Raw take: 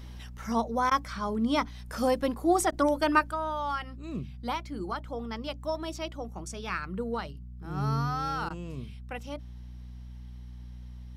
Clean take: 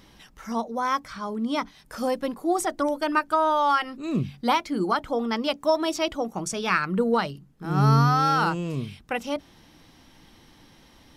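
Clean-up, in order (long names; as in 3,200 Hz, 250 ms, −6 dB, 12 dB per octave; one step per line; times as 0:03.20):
hum removal 60.9 Hz, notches 4
repair the gap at 0:00.90/0:02.71/0:08.49, 11 ms
level 0 dB, from 0:03.31 +10.5 dB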